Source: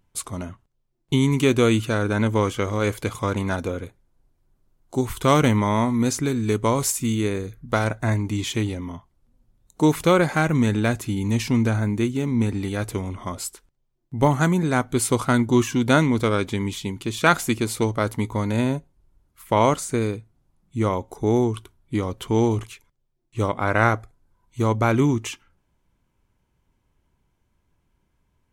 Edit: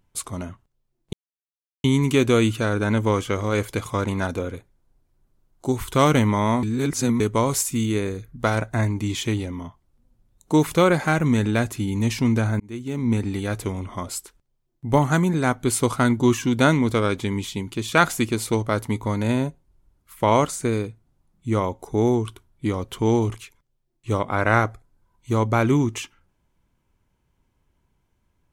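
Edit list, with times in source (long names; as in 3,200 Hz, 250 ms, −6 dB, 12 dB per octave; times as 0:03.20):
0:01.13: splice in silence 0.71 s
0:05.92–0:06.49: reverse
0:11.89–0:12.38: fade in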